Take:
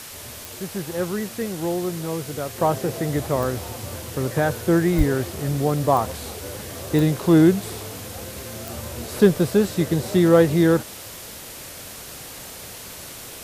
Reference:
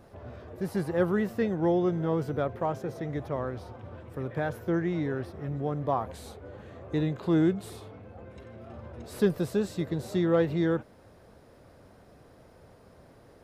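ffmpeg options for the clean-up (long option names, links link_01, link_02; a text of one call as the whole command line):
ffmpeg -i in.wav -filter_complex "[0:a]adeclick=threshold=4,asplit=3[link_01][link_02][link_03];[link_01]afade=type=out:start_time=4.97:duration=0.02[link_04];[link_02]highpass=frequency=140:width=0.5412,highpass=frequency=140:width=1.3066,afade=type=in:start_time=4.97:duration=0.02,afade=type=out:start_time=5.09:duration=0.02[link_05];[link_03]afade=type=in:start_time=5.09:duration=0.02[link_06];[link_04][link_05][link_06]amix=inputs=3:normalize=0,afwtdn=0.014,asetnsamples=nb_out_samples=441:pad=0,asendcmd='2.58 volume volume -9.5dB',volume=0dB" out.wav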